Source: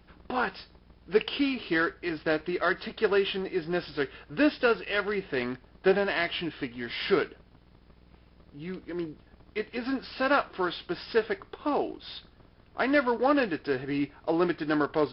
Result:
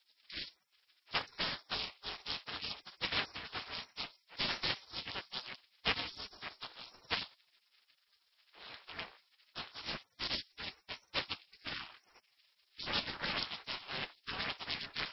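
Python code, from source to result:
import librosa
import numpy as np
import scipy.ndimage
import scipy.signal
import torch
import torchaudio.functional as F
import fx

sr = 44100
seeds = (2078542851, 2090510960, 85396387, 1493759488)

y = fx.hum_notches(x, sr, base_hz=60, count=8)
y = fx.spec_gate(y, sr, threshold_db=-30, keep='weak')
y = y * np.sin(2.0 * np.pi * 190.0 * np.arange(len(y)) / sr)
y = y * librosa.db_to_amplitude(11.5)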